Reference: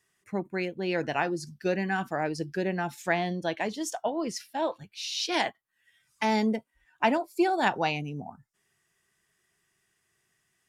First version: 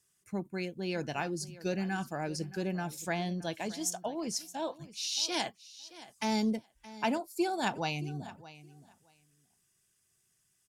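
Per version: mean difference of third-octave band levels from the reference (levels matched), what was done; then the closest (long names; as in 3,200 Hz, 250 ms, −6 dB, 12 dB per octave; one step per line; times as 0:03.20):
5.0 dB: bass and treble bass +7 dB, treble +12 dB
notch filter 1,900 Hz, Q 10
repeating echo 621 ms, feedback 16%, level −17.5 dB
level −7.5 dB
Nellymoser 88 kbit/s 44,100 Hz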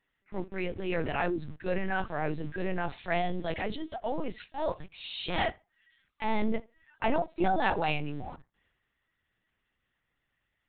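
8.5 dB: transient designer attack −6 dB, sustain +7 dB
in parallel at −7 dB: bit reduction 7 bits
on the sum: tape delay 69 ms, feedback 20%, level −23 dB, low-pass 2,900 Hz
linear-prediction vocoder at 8 kHz pitch kept
level −4 dB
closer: first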